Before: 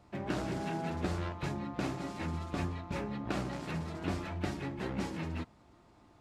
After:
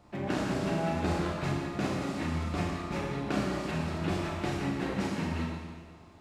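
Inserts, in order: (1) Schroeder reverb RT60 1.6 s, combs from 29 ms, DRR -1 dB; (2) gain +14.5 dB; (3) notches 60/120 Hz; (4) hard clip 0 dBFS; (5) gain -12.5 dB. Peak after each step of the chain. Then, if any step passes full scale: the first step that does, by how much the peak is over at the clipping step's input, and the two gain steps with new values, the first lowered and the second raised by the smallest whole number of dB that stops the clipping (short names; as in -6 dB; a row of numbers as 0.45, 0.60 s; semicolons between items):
-19.0, -4.5, -4.5, -4.5, -17.0 dBFS; no overload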